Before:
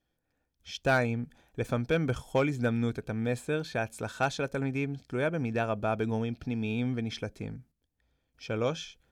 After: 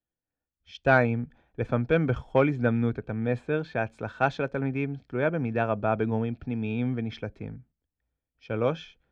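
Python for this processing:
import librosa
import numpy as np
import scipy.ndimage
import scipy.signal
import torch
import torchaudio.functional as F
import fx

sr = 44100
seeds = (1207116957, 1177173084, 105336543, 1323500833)

y = scipy.signal.sosfilt(scipy.signal.butter(2, 2400.0, 'lowpass', fs=sr, output='sos'), x)
y = fx.band_widen(y, sr, depth_pct=40)
y = y * librosa.db_to_amplitude(3.5)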